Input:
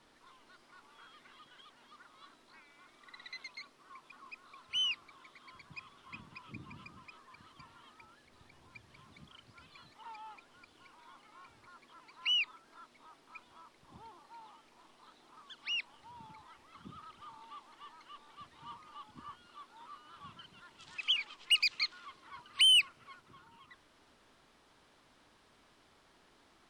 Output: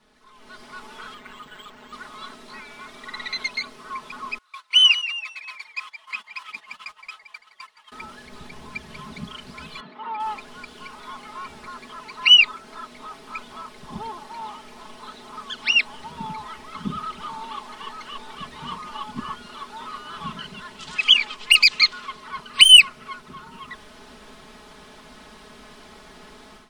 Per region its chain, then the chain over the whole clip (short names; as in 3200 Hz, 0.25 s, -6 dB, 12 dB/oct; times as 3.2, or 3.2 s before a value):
1.14–1.93 high shelf 8000 Hz -4.5 dB + AM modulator 200 Hz, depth 40% + decimation joined by straight lines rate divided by 4×
4.38–7.92 HPF 1300 Hz + gate -60 dBFS, range -19 dB + frequency-shifting echo 0.167 s, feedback 53%, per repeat -120 Hz, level -13.5 dB
9.8–10.2 HPF 180 Hz 24 dB/oct + air absorption 390 m
whole clip: comb 4.7 ms, depth 88%; AGC gain up to 16.5 dB; low shelf 320 Hz +4 dB